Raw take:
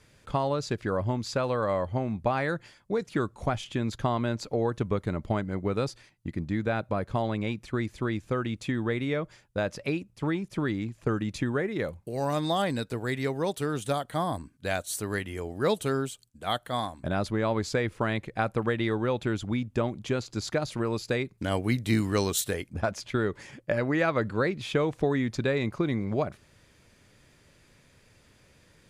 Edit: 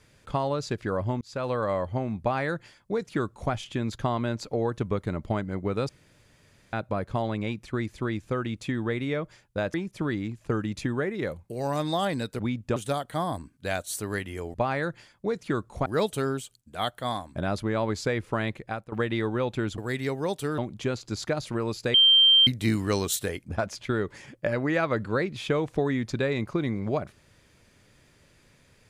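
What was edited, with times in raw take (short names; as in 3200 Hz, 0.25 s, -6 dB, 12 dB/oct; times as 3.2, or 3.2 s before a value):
1.21–1.49 fade in
2.2–3.52 copy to 15.54
5.89–6.73 room tone
9.74–10.31 cut
12.96–13.76 swap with 19.46–19.83
18.21–18.6 fade out, to -19 dB
21.19–21.72 bleep 3150 Hz -14 dBFS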